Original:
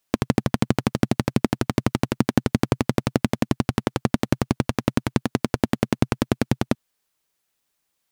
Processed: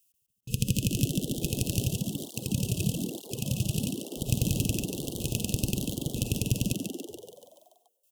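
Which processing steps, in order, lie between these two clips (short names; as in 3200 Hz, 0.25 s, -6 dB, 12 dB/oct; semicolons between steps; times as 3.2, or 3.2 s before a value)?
brick-wall FIR band-stop 520–2500 Hz; passive tone stack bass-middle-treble 10-0-10; digital reverb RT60 0.66 s, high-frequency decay 0.35×, pre-delay 0.11 s, DRR 7.5 dB; step gate "x...xxxx" 127 bpm -60 dB; graphic EQ 125/500/1000/4000 Hz +3/-6/+11/-12 dB; frequency-shifting echo 0.143 s, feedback 60%, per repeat +74 Hz, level -5.5 dB; echoes that change speed 0.583 s, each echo +3 st, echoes 3, each echo -6 dB; 1.86–4.11 tape flanging out of phase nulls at 1.1 Hz, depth 4.4 ms; gain +8.5 dB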